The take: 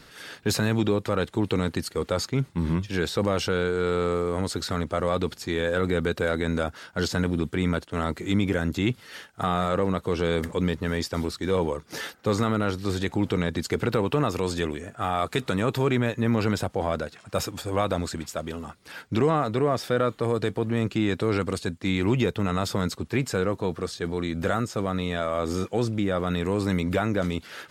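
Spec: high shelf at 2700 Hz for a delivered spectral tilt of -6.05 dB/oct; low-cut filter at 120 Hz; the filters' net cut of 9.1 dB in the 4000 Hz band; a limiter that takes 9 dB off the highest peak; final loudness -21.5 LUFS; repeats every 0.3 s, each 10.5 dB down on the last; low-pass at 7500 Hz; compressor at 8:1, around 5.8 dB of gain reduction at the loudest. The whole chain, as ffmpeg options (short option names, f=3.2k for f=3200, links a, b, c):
-af "highpass=120,lowpass=7.5k,highshelf=f=2.7k:g=-3.5,equalizer=f=4k:t=o:g=-8,acompressor=threshold=-25dB:ratio=8,alimiter=limit=-24dB:level=0:latency=1,aecho=1:1:300|600|900:0.299|0.0896|0.0269,volume=13.5dB"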